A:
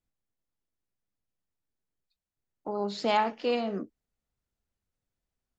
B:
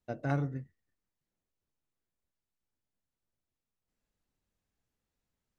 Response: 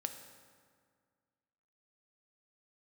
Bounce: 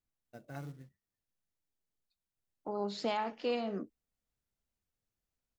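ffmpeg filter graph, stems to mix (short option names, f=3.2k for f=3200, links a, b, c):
-filter_complex "[0:a]volume=-4.5dB[a];[1:a]highshelf=f=3.5k:g=8.5,flanger=delay=3.8:depth=2.8:regen=70:speed=1.1:shape=triangular,acrusher=bits=5:mode=log:mix=0:aa=0.000001,adelay=250,volume=-9dB[b];[a][b]amix=inputs=2:normalize=0,alimiter=limit=-23.5dB:level=0:latency=1:release=214"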